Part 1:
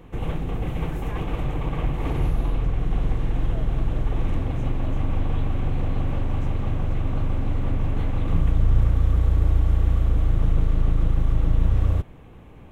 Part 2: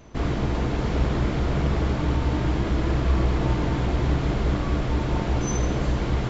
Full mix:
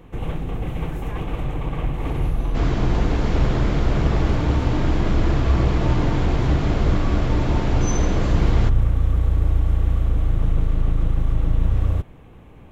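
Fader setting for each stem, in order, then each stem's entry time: +0.5, +2.0 dB; 0.00, 2.40 s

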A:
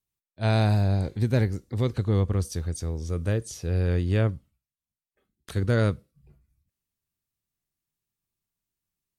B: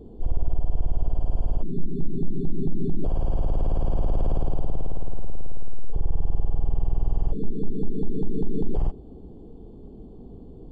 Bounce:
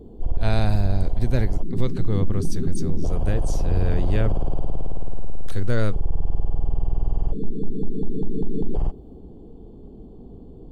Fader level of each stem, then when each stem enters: -1.0, +1.0 dB; 0.00, 0.00 s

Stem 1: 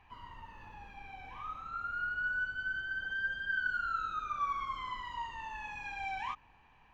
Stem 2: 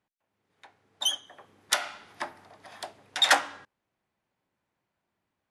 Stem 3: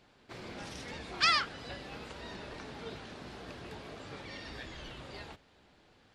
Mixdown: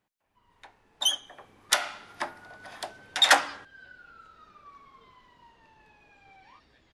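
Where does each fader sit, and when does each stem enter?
-17.5, +2.0, -18.5 dB; 0.25, 0.00, 2.15 s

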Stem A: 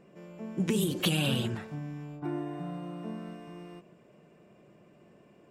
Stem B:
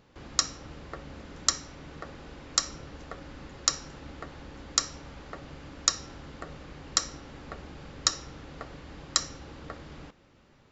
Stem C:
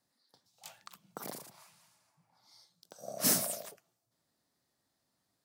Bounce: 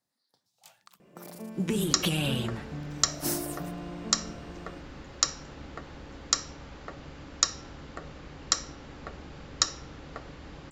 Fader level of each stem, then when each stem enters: -0.5, 0.0, -4.5 dB; 1.00, 1.55, 0.00 s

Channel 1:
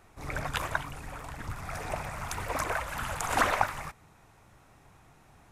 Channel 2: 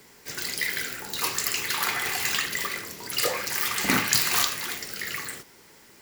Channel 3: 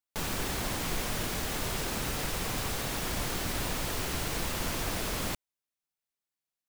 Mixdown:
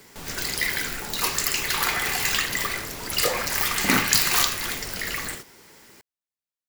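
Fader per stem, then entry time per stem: -11.5, +2.5, -5.5 dB; 0.00, 0.00, 0.00 s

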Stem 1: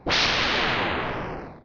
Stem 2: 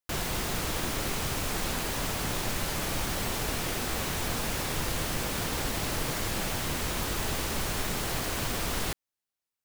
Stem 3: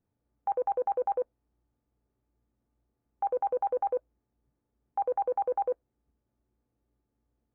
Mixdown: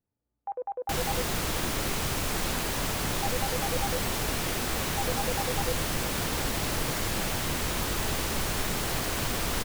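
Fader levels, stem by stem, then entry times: off, +1.5 dB, -5.5 dB; off, 0.80 s, 0.00 s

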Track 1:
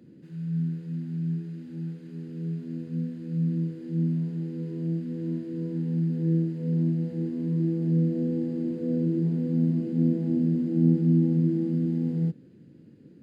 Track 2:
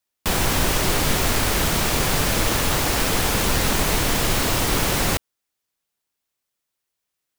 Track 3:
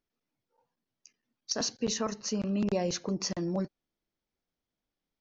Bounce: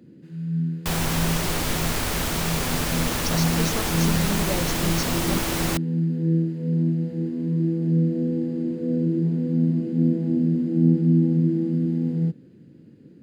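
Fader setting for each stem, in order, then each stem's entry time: +3.0, -5.0, 0.0 dB; 0.00, 0.60, 1.75 s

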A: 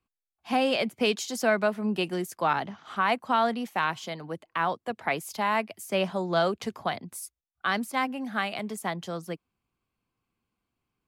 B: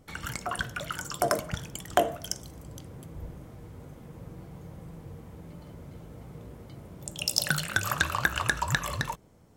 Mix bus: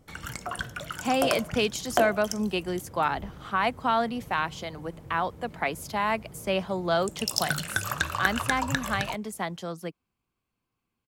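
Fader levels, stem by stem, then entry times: -0.5, -1.5 dB; 0.55, 0.00 s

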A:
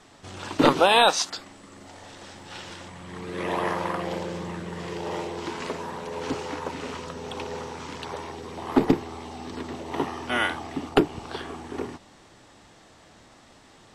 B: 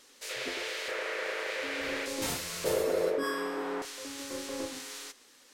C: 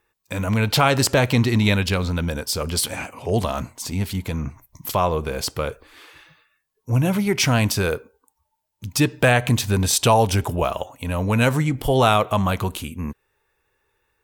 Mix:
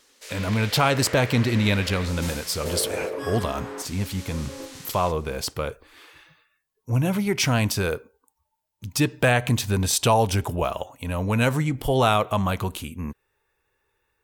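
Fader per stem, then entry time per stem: off, -1.0 dB, -3.0 dB; off, 0.00 s, 0.00 s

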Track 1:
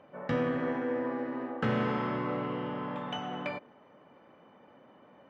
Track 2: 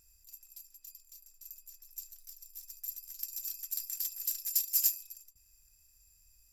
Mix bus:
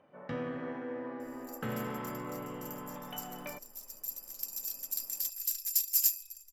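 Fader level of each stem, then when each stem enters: -7.5, +1.0 dB; 0.00, 1.20 s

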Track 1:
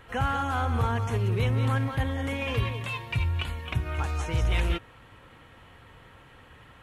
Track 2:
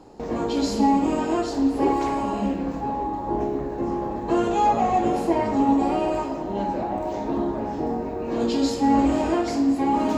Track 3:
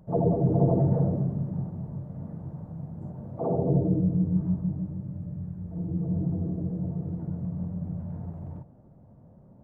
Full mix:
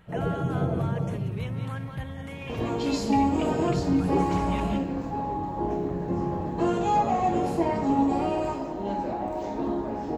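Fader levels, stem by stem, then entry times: -8.5, -3.5, -5.0 dB; 0.00, 2.30, 0.00 s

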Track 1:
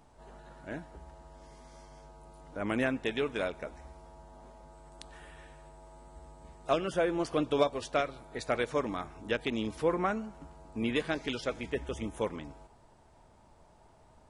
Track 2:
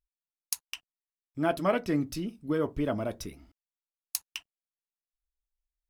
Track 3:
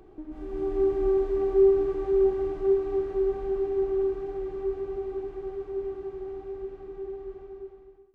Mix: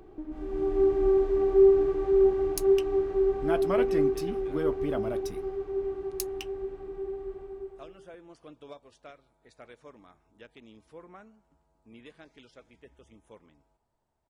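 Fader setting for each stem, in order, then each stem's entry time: -19.5, -3.0, +1.0 dB; 1.10, 2.05, 0.00 s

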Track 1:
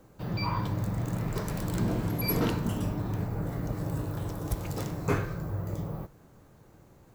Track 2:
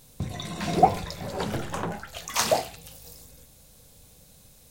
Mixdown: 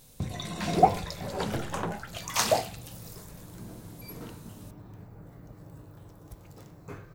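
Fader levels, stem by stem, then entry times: -15.5, -1.5 dB; 1.80, 0.00 s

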